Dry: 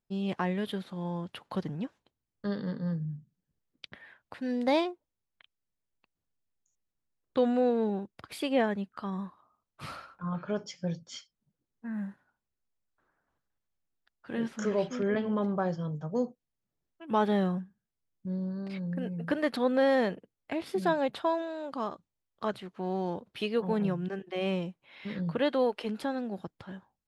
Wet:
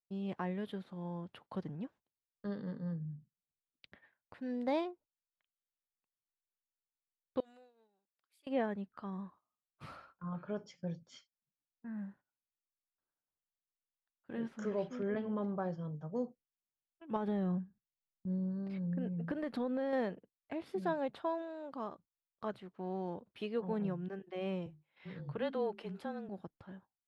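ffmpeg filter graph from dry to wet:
-filter_complex "[0:a]asettb=1/sr,asplit=3[s0][s1][s2];[s0]atrim=end=7.404[s3];[s1]atrim=start=7.4:end=8.47,asetpts=PTS-STARTPTS,afade=t=in:d=0.004:c=qsin,afade=t=out:st=1.066:d=0.004:c=qsin,aderivative,acompressor=threshold=0.00398:ratio=10:attack=3.2:release=140:knee=1:detection=peak[s4];[s2]atrim=start=8.466[s5];[s3][s4]acrossfade=d=0.004:c1=hsin:c2=qsin[s6];[s6][s5]acrossfade=d=0.004:c1=qsin:c2=hsin,asettb=1/sr,asplit=3[s7][s8][s9];[s7]atrim=end=17.164[s10];[s8]atrim=start=17.16:end=19.93,asetpts=PTS-STARTPTS,afade=t=in:d=0.004:c=qsin,afade=t=out:st=2.766:d=0.004:c=qsin,acompressor=threshold=0.0447:ratio=6:attack=3.2:release=140:knee=1:detection=peak,lowshelf=f=290:g=6.5[s11];[s9]atrim=start=19.926[s12];[s10][s11]acrossfade=d=0.004:c1=hsin:c2=qsin[s13];[s13][s12]acrossfade=d=0.004:c1=qsin:c2=hsin,asettb=1/sr,asplit=3[s14][s15][s16];[s14]atrim=end=24.664[s17];[s15]atrim=start=24.66:end=26.29,asetpts=PTS-STARTPTS,afade=t=in:d=0.004:c=qsin,afade=t=out:st=1.626:d=0.004:c=qsin,lowshelf=f=400:g=-3,bandreject=f=60:t=h:w=6,bandreject=f=120:t=h:w=6,bandreject=f=180:t=h:w=6,bandreject=f=240:t=h:w=6,bandreject=f=300:t=h:w=6,bandreject=f=360:t=h:w=6,bandreject=f=420:t=h:w=6,afreqshift=-28[s18];[s16]atrim=start=26.286[s19];[s17][s18]acrossfade=d=0.004:c1=hsin:c2=qsin[s20];[s20][s19]acrossfade=d=0.004:c1=qsin:c2=hsin,agate=range=0.178:threshold=0.00282:ratio=16:detection=peak,highshelf=f=2600:g=-9.5,volume=0.447"

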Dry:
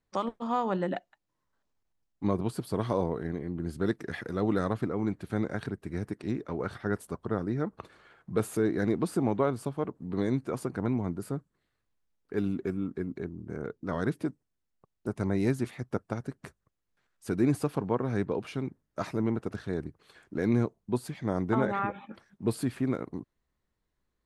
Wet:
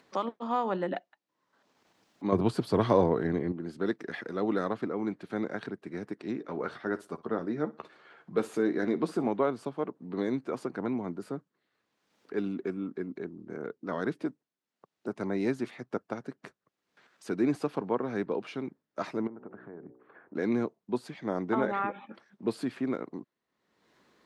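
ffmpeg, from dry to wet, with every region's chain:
-filter_complex "[0:a]asettb=1/sr,asplit=3[s0][s1][s2];[s0]atrim=end=2.324[s3];[s1]atrim=start=2.32:end=3.52,asetpts=PTS-STARTPTS,afade=t=in:d=0.004:c=qsin,afade=t=out:st=1.196:d=0.004:c=qsin,equalizer=f=93:w=1.7:g=14.5,acontrast=61[s4];[s2]atrim=start=3.516[s5];[s3][s4]acrossfade=d=0.004:c1=hsin:c2=qsin[s6];[s6][s5]acrossfade=d=0.004:c1=qsin:c2=hsin,asettb=1/sr,asplit=3[s7][s8][s9];[s7]atrim=end=6.384[s10];[s8]atrim=start=6.38:end=9.28,asetpts=PTS-STARTPTS,afade=t=in:d=0.004:c=qsin,afade=t=out:st=2.896:d=0.004:c=qsin,asplit=2[s11][s12];[s12]adelay=13,volume=0.355[s13];[s11][s13]amix=inputs=2:normalize=0,atrim=end_sample=127890,aecho=1:1:61|122:0.106|0.0254,atrim=end_sample=127890[s14];[s9]atrim=start=9.276[s15];[s10][s14]acrossfade=d=0.004:c1=hsin:c2=qsin[s16];[s16][s15]acrossfade=d=0.004:c1=qsin:c2=hsin,asettb=1/sr,asplit=3[s17][s18][s19];[s17]atrim=end=19.274[s20];[s18]atrim=start=19.27:end=20.35,asetpts=PTS-STARTPTS,afade=t=in:d=0.004:c=qsin,afade=t=out:st=1.076:d=0.004:c=qsin,bandreject=f=62.16:t=h:w=4,bandreject=f=124.32:t=h:w=4,bandreject=f=186.48:t=h:w=4,bandreject=f=248.64:t=h:w=4,bandreject=f=310.8:t=h:w=4,bandreject=f=372.96:t=h:w=4,bandreject=f=435.12:t=h:w=4,bandreject=f=497.28:t=h:w=4,bandreject=f=559.44:t=h:w=4,bandreject=f=621.6:t=h:w=4,bandreject=f=683.76:t=h:w=4,bandreject=f=745.92:t=h:w=4,bandreject=f=808.08:t=h:w=4,bandreject=f=870.24:t=h:w=4,bandreject=f=932.4:t=h:w=4,acompressor=threshold=0.0141:ratio=12:attack=3.2:release=140:knee=1:detection=peak,lowpass=f=1600:w=0.5412,lowpass=f=1600:w=1.3066[s21];[s19]atrim=start=20.346[s22];[s20][s21]acrossfade=d=0.004:c1=hsin:c2=qsin[s23];[s23][s22]acrossfade=d=0.004:c1=qsin:c2=hsin,highpass=77,acrossover=split=180 6300:gain=0.0891 1 0.178[s24][s25][s26];[s24][s25][s26]amix=inputs=3:normalize=0,acompressor=mode=upward:threshold=0.00447:ratio=2.5"

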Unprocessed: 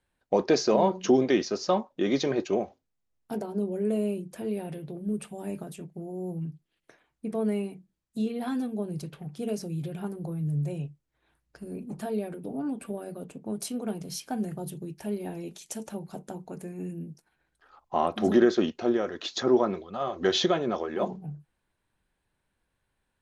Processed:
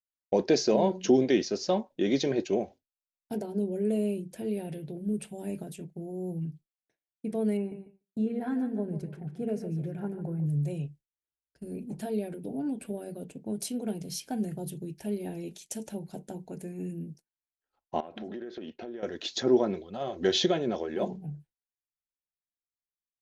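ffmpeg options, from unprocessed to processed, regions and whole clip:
-filter_complex "[0:a]asettb=1/sr,asplit=3[s0][s1][s2];[s0]atrim=end=7.574[s3];[s1]atrim=start=7.57:end=10.46,asetpts=PTS-STARTPTS,afade=t=in:d=0.004:c=qsin,afade=t=out:st=2.886:d=0.004:c=qsin,highshelf=f=2400:t=q:w=1.5:g=-12,aecho=1:1:146|292|438:0.282|0.0846|0.0254,atrim=end_sample=127449[s4];[s2]atrim=start=10.456[s5];[s3][s4]acrossfade=d=0.004:c1=hsin:c2=qsin[s6];[s6][s5]acrossfade=d=0.004:c1=qsin:c2=hsin,asettb=1/sr,asplit=3[s7][s8][s9];[s7]atrim=end=18.004[s10];[s8]atrim=start=18:end=19.03,asetpts=PTS-STARTPTS,afade=t=in:d=0.004:c=qsin,afade=t=out:st=1.026:d=0.004:c=qsin,lowpass=3100,lowshelf=f=190:g=-9,acompressor=threshold=0.02:ratio=20:attack=3.2:release=140:knee=1:detection=peak[s11];[s9]atrim=start=19.026[s12];[s10][s11]acrossfade=d=0.004:c1=hsin:c2=qsin[s13];[s13][s12]acrossfade=d=0.004:c1=qsin:c2=hsin,agate=range=0.0224:threshold=0.00708:ratio=3:detection=peak,equalizer=f=1100:w=1.2:g=-7,bandreject=f=1200:w=6.3"

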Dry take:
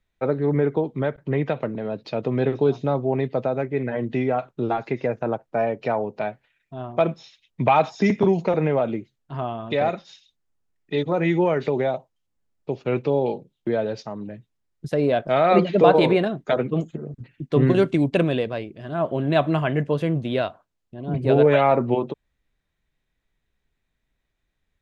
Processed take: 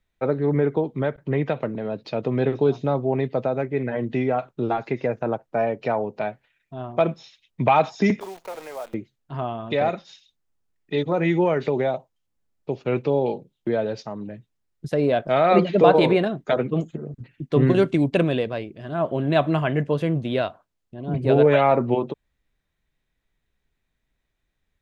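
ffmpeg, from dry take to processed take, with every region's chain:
-filter_complex "[0:a]asettb=1/sr,asplit=3[s0][s1][s2];[s0]atrim=end=8.204[s3];[s1]atrim=start=8.2:end=8.94,asetpts=PTS-STARTPTS,afade=t=in:d=0.004:c=qsin,afade=t=out:st=0.736:d=0.004:c=qsin,highpass=1000,equalizer=f=3100:w=0.38:g=-10.5,acrusher=bits=8:dc=4:mix=0:aa=0.000001[s4];[s2]atrim=start=8.936[s5];[s3][s4]acrossfade=d=0.004:c1=hsin:c2=qsin[s6];[s6][s5]acrossfade=d=0.004:c1=qsin:c2=hsin"

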